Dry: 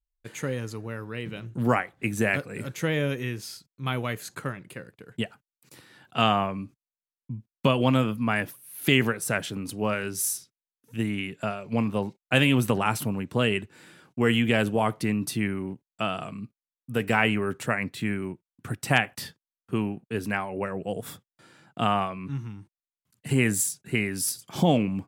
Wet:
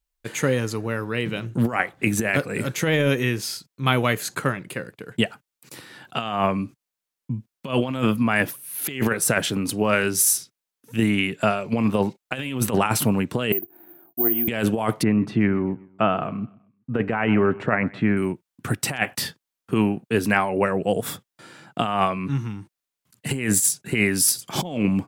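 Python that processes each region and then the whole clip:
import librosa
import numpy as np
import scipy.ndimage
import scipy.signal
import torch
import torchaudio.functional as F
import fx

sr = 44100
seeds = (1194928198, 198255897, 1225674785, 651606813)

y = fx.chain(x, sr, fx.double_bandpass(hz=490.0, octaves=0.97),
    fx.resample_bad(factor=3, down='none', up='zero_stuff'), at=(13.52, 14.48))
y = fx.chain(y, sr, fx.lowpass(hz=1600.0, slope=12),
    fx.echo_feedback(ms=127, feedback_pct=37, wet_db=-22.5), at=(15.03, 18.17))
y = fx.low_shelf(y, sr, hz=87.0, db=-9.0)
y = fx.over_compress(y, sr, threshold_db=-27.0, ratio=-0.5)
y = F.gain(torch.from_numpy(y), 7.5).numpy()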